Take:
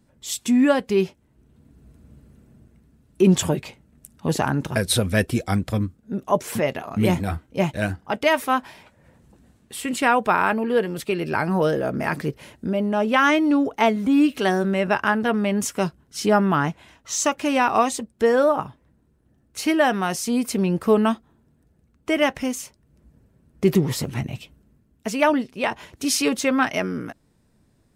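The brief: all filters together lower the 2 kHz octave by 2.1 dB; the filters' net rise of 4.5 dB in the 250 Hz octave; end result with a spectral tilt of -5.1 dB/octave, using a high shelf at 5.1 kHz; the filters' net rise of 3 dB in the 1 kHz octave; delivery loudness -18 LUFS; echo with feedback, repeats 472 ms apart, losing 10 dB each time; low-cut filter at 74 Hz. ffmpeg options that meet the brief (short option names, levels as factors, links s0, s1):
-af "highpass=74,equalizer=f=250:t=o:g=5.5,equalizer=f=1000:t=o:g=4.5,equalizer=f=2000:t=o:g=-5.5,highshelf=f=5100:g=6,aecho=1:1:472|944|1416|1888:0.316|0.101|0.0324|0.0104,volume=1.12"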